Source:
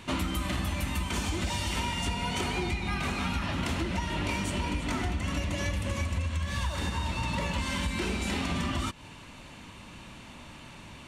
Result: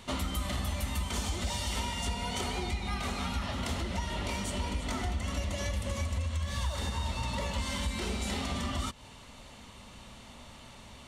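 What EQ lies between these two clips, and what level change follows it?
thirty-one-band graphic EQ 100 Hz −5 dB, 160 Hz −11 dB, 315 Hz −12 dB, 1,000 Hz −4 dB, 1,600 Hz −7 dB, 2,500 Hz −8 dB
0.0 dB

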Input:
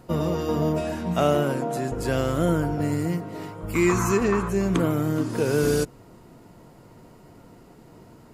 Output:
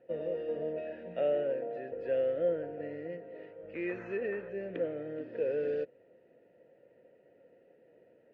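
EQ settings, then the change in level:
formant filter e
high-frequency loss of the air 330 metres
+1.0 dB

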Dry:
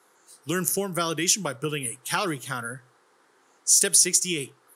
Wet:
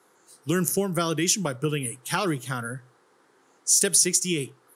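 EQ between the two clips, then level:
low-shelf EQ 420 Hz +7.5 dB
−1.5 dB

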